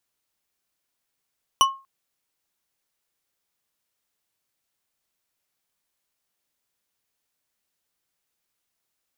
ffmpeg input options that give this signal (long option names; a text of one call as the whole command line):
ffmpeg -f lavfi -i "aevalsrc='0.282*pow(10,-3*t/0.31)*sin(2*PI*1080*t)+0.188*pow(10,-3*t/0.152)*sin(2*PI*2977.6*t)+0.126*pow(10,-3*t/0.095)*sin(2*PI*5836.3*t)+0.0841*pow(10,-3*t/0.067)*sin(2*PI*9647.6*t)+0.0562*pow(10,-3*t/0.051)*sin(2*PI*14407.2*t)':duration=0.24:sample_rate=44100" out.wav